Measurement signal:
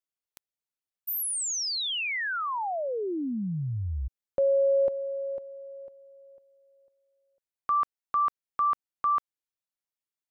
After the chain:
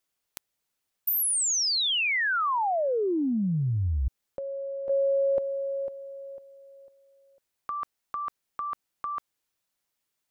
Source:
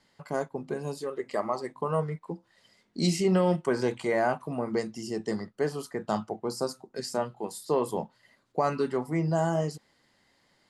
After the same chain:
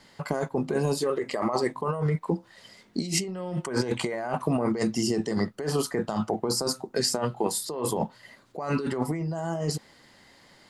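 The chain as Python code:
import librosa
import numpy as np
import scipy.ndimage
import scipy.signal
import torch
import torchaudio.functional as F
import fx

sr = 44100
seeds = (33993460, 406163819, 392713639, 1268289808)

y = fx.over_compress(x, sr, threshold_db=-34.0, ratio=-1.0)
y = y * 10.0 ** (6.5 / 20.0)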